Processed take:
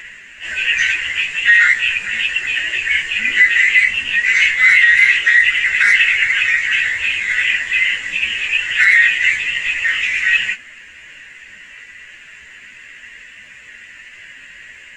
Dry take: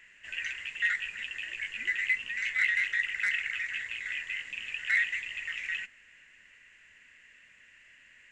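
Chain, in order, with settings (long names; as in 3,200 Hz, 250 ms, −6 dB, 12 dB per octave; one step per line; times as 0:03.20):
time stretch by phase vocoder 1.8×
boost into a limiter +23 dB
level −1 dB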